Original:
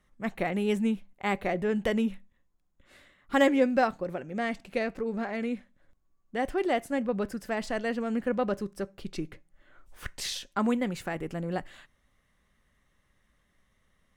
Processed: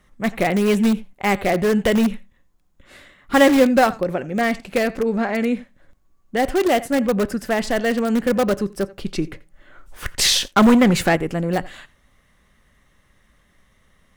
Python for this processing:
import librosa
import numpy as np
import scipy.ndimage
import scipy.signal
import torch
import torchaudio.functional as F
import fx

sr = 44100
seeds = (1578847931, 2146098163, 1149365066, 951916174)

p1 = x + 10.0 ** (-21.0 / 20.0) * np.pad(x, (int(86 * sr / 1000.0), 0))[:len(x)]
p2 = (np.mod(10.0 ** (22.5 / 20.0) * p1 + 1.0, 2.0) - 1.0) / 10.0 ** (22.5 / 20.0)
p3 = p1 + F.gain(torch.from_numpy(p2), -11.0).numpy()
p4 = fx.leveller(p3, sr, passes=2, at=(10.19, 11.16))
y = F.gain(torch.from_numpy(p4), 9.0).numpy()